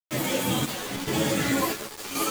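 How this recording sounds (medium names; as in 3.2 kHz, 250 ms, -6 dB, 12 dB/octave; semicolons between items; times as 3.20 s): chopped level 0.93 Hz, depth 65%, duty 60%; a quantiser's noise floor 6-bit, dither none; a shimmering, thickened sound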